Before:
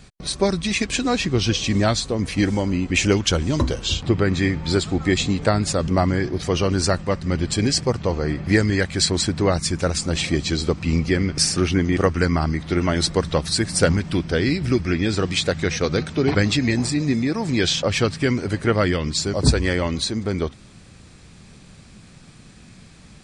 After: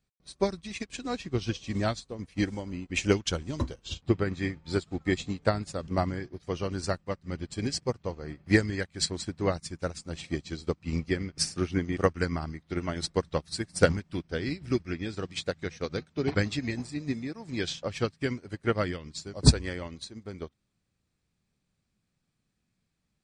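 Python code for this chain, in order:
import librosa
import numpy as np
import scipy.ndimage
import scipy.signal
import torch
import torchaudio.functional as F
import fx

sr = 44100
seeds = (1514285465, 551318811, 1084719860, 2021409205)

y = fx.upward_expand(x, sr, threshold_db=-33.0, expansion=2.5)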